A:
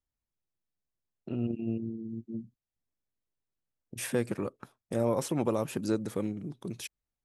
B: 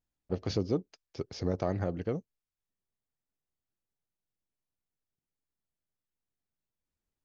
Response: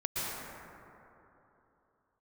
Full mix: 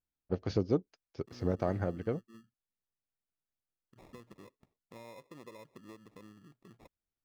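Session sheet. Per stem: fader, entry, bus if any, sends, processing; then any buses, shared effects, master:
-19.0 dB, 0.00 s, no send, LFO low-pass sine 0.32 Hz 510–4800 Hz; compression 6:1, threshold -28 dBFS, peak gain reduction 9.5 dB; sample-and-hold 29×
+1.5 dB, 0.00 s, no send, peaking EQ 1.5 kHz +3.5 dB 0.36 oct; upward expansion 1.5:1, over -41 dBFS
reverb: none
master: treble shelf 4.5 kHz -6 dB

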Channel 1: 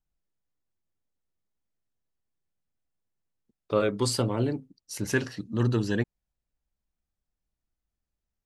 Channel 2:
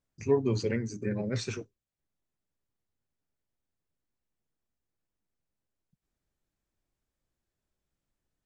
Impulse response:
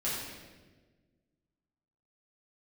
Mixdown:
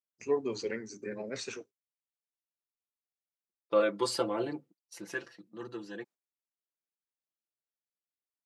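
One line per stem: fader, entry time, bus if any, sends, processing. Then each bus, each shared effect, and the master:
4.63 s -3 dB -> 5.32 s -13 dB, 0.00 s, no send, comb 5.9 ms, depth 85%; gate -44 dBFS, range -9 dB; treble shelf 5.1 kHz -9.5 dB
-2.0 dB, 0.00 s, no send, vibrato 0.91 Hz 49 cents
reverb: none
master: gate -51 dBFS, range -16 dB; high-pass 350 Hz 12 dB/octave

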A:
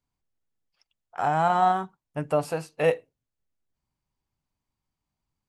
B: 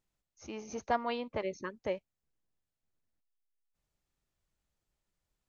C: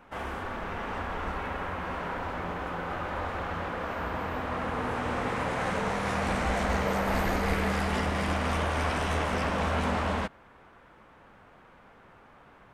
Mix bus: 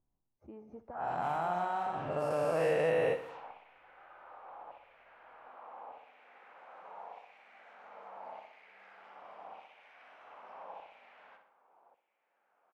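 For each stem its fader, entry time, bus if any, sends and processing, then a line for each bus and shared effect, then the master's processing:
-2.0 dB, 0.00 s, no bus, no send, echo send -13.5 dB, every event in the spectrogram widened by 480 ms; bass shelf 400 Hz -4.5 dB; auto duck -8 dB, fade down 0.25 s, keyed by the second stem
-4.5 dB, 0.00 s, bus A, no send, echo send -22 dB, none
-2.5 dB, 1.10 s, bus A, no send, echo send -14 dB, high-order bell 1.4 kHz -11 dB 1.2 oct; LFO high-pass saw down 0.83 Hz 860–2600 Hz; treble shelf 4.7 kHz +10 dB
bus A: 0.0 dB, treble shelf 4.2 kHz +8 dB; compression, threshold -44 dBFS, peak gain reduction 15.5 dB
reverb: none
echo: feedback delay 62 ms, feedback 53%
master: level-controlled noise filter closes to 730 Hz, open at -24 dBFS; treble shelf 2.5 kHz -10 dB; compression 1.5:1, threshold -40 dBFS, peak gain reduction 8 dB

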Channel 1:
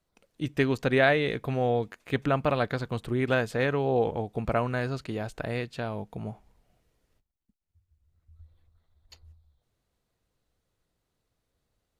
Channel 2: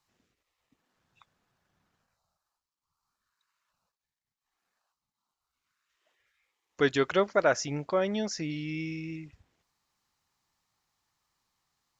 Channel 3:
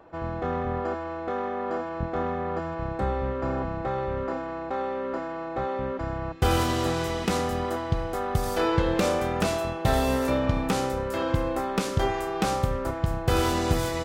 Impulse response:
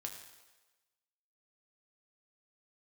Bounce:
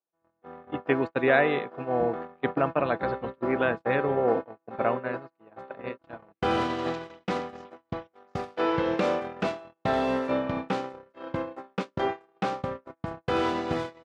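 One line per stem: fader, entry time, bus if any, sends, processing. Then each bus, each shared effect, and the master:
-0.5 dB, 0.30 s, send -14 dB, spectral gate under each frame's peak -30 dB strong
-7.0 dB, 0.00 s, no send, compressor with a negative ratio -33 dBFS; spectrum-flattening compressor 4:1
-0.5 dB, 0.00 s, no send, none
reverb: on, RT60 1.2 s, pre-delay 5 ms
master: gate -25 dBFS, range -45 dB; band-pass 190–3100 Hz

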